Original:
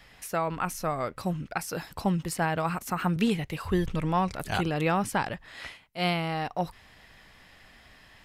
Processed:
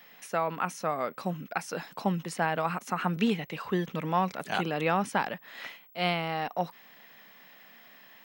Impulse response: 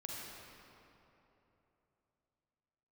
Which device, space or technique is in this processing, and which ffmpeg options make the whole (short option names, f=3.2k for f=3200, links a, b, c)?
old television with a line whistle: -filter_complex "[0:a]asettb=1/sr,asplit=3[a][b][c];[a]atrim=end=3.204[d];[b]atrim=start=3.2:end=3.96,asetpts=PTS-STARTPTS,afade=t=in:d=0.004:c=qsin,afade=t=out:st=0.756:d=0.004:c=qsin,lowpass=9k[e];[c]atrim=start=3.956[f];[d][e]acrossfade=d=0.004:c1=hsin:c2=qsin[g];[g][f]acrossfade=d=0.004:c1=qsin:c2=hsin,highpass=f=180:w=0.5412,highpass=f=180:w=1.3066,equalizer=f=330:t=q:w=4:g=-4,equalizer=f=4.7k:t=q:w=4:g=-5,equalizer=f=7.8k:t=q:w=4:g=-7,lowpass=f=8.9k:w=0.5412,lowpass=f=8.9k:w=1.3066,aeval=exprs='val(0)+0.00178*sin(2*PI*15734*n/s)':c=same"